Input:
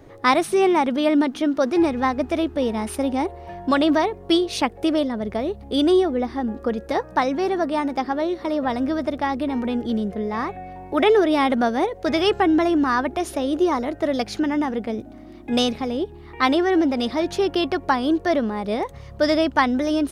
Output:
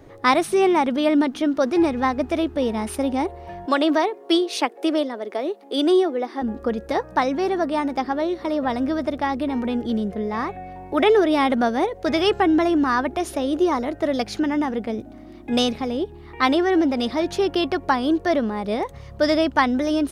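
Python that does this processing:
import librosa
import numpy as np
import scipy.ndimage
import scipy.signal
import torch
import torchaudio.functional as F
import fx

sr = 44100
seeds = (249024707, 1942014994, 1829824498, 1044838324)

y = fx.steep_highpass(x, sr, hz=280.0, slope=36, at=(3.66, 6.42))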